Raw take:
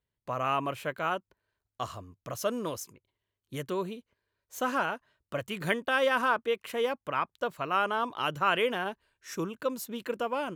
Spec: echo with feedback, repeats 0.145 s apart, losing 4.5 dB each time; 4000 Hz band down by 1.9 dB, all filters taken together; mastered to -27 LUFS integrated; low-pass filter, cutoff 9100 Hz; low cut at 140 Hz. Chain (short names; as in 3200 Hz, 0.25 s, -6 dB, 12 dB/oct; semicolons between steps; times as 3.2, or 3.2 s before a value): HPF 140 Hz; LPF 9100 Hz; bell 4000 Hz -3 dB; feedback echo 0.145 s, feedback 60%, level -4.5 dB; gain +3 dB